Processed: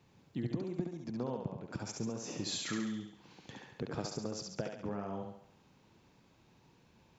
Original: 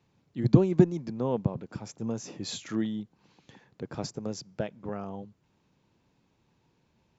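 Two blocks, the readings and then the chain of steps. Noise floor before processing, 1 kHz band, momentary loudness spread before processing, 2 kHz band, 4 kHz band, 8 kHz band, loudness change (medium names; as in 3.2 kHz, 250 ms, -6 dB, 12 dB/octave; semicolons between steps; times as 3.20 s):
-71 dBFS, -5.0 dB, 18 LU, -0.5 dB, -0.5 dB, no reading, -10.0 dB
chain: compression 6:1, threshold -39 dBFS, peak gain reduction 24.5 dB; on a send: thinning echo 69 ms, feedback 55%, high-pass 350 Hz, level -3 dB; on the sum: trim +3.5 dB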